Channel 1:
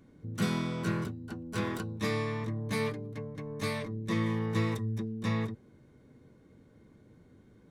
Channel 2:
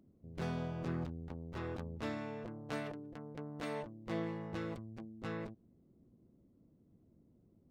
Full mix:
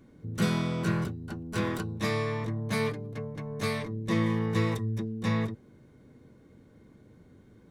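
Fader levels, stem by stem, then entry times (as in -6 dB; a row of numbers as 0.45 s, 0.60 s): +2.5 dB, -1.0 dB; 0.00 s, 0.00 s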